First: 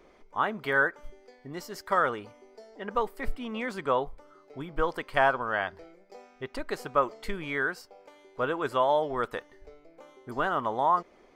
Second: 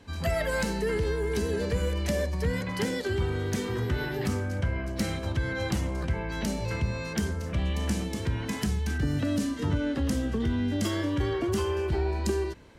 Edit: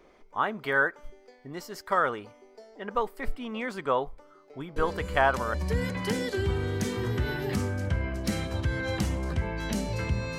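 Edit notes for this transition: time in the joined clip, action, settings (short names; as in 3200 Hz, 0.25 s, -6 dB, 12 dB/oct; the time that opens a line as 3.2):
first
4.76 add second from 1.48 s 0.78 s -7.5 dB
5.54 switch to second from 2.26 s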